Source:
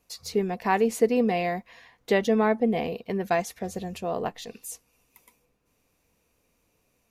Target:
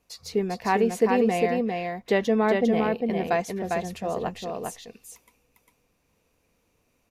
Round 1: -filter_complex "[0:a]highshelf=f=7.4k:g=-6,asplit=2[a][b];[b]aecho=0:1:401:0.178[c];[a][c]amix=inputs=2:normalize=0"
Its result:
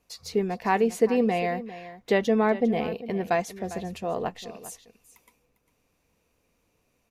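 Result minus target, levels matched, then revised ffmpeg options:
echo-to-direct -11.5 dB
-filter_complex "[0:a]highshelf=f=7.4k:g=-6,asplit=2[a][b];[b]aecho=0:1:401:0.668[c];[a][c]amix=inputs=2:normalize=0"

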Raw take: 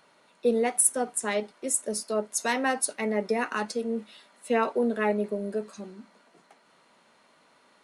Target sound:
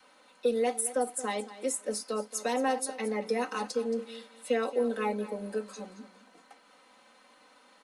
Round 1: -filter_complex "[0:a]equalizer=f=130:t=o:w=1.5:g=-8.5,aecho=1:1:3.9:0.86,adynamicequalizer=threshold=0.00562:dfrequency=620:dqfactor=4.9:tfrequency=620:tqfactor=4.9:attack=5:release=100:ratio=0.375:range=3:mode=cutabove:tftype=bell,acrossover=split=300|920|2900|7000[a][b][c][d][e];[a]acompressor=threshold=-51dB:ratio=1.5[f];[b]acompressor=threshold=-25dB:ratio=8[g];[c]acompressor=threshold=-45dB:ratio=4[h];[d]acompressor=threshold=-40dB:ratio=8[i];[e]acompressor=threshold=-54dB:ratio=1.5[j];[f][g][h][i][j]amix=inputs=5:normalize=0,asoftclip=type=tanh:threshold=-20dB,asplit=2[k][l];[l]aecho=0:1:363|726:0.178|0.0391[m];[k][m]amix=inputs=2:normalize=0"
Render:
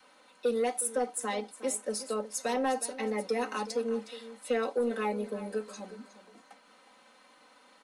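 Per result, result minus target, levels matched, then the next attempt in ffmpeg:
echo 0.139 s late; soft clip: distortion +15 dB
-filter_complex "[0:a]equalizer=f=130:t=o:w=1.5:g=-8.5,aecho=1:1:3.9:0.86,adynamicequalizer=threshold=0.00562:dfrequency=620:dqfactor=4.9:tfrequency=620:tqfactor=4.9:attack=5:release=100:ratio=0.375:range=3:mode=cutabove:tftype=bell,acrossover=split=300|920|2900|7000[a][b][c][d][e];[a]acompressor=threshold=-51dB:ratio=1.5[f];[b]acompressor=threshold=-25dB:ratio=8[g];[c]acompressor=threshold=-45dB:ratio=4[h];[d]acompressor=threshold=-40dB:ratio=8[i];[e]acompressor=threshold=-54dB:ratio=1.5[j];[f][g][h][i][j]amix=inputs=5:normalize=0,asoftclip=type=tanh:threshold=-20dB,asplit=2[k][l];[l]aecho=0:1:224|448:0.178|0.0391[m];[k][m]amix=inputs=2:normalize=0"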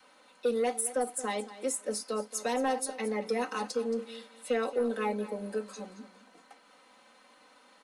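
soft clip: distortion +15 dB
-filter_complex "[0:a]equalizer=f=130:t=o:w=1.5:g=-8.5,aecho=1:1:3.9:0.86,adynamicequalizer=threshold=0.00562:dfrequency=620:dqfactor=4.9:tfrequency=620:tqfactor=4.9:attack=5:release=100:ratio=0.375:range=3:mode=cutabove:tftype=bell,acrossover=split=300|920|2900|7000[a][b][c][d][e];[a]acompressor=threshold=-51dB:ratio=1.5[f];[b]acompressor=threshold=-25dB:ratio=8[g];[c]acompressor=threshold=-45dB:ratio=4[h];[d]acompressor=threshold=-40dB:ratio=8[i];[e]acompressor=threshold=-54dB:ratio=1.5[j];[f][g][h][i][j]amix=inputs=5:normalize=0,asoftclip=type=tanh:threshold=-11.5dB,asplit=2[k][l];[l]aecho=0:1:224|448:0.178|0.0391[m];[k][m]amix=inputs=2:normalize=0"

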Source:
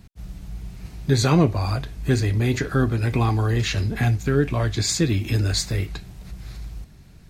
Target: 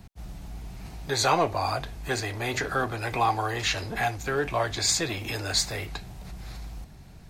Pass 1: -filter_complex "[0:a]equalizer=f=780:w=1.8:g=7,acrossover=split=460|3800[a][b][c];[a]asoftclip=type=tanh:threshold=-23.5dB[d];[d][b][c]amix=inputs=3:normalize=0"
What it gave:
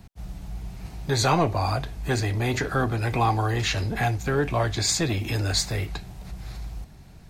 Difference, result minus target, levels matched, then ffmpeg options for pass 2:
soft clip: distortion -6 dB
-filter_complex "[0:a]equalizer=f=780:w=1.8:g=7,acrossover=split=460|3800[a][b][c];[a]asoftclip=type=tanh:threshold=-35dB[d];[d][b][c]amix=inputs=3:normalize=0"

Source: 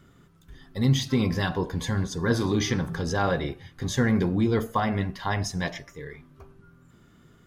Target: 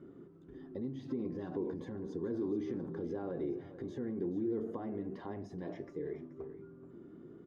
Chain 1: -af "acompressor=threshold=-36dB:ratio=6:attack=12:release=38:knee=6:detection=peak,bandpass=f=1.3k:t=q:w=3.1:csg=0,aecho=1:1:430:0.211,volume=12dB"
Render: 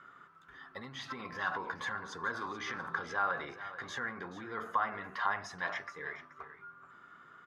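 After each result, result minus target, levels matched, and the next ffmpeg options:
1000 Hz band +15.0 dB; compressor: peak gain reduction -6 dB
-af "acompressor=threshold=-36dB:ratio=6:attack=12:release=38:knee=6:detection=peak,bandpass=f=340:t=q:w=3.1:csg=0,aecho=1:1:430:0.211,volume=12dB"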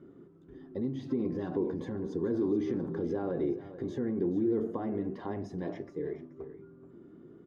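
compressor: peak gain reduction -6 dB
-af "acompressor=threshold=-43.5dB:ratio=6:attack=12:release=38:knee=6:detection=peak,bandpass=f=340:t=q:w=3.1:csg=0,aecho=1:1:430:0.211,volume=12dB"

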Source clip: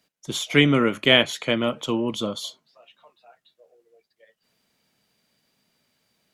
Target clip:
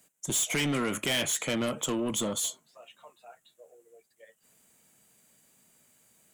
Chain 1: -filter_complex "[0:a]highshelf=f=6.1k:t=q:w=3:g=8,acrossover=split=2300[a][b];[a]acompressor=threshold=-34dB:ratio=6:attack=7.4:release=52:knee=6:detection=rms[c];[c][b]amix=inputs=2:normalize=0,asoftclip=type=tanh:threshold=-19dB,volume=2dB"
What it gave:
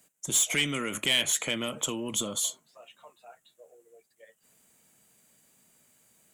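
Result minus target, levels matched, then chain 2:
compressor: peak gain reduction +8 dB; soft clip: distortion -5 dB
-filter_complex "[0:a]highshelf=f=6.1k:t=q:w=3:g=8,acrossover=split=2300[a][b];[a]acompressor=threshold=-24.5dB:ratio=6:attack=7.4:release=52:knee=6:detection=rms[c];[c][b]amix=inputs=2:normalize=0,asoftclip=type=tanh:threshold=-26dB,volume=2dB"

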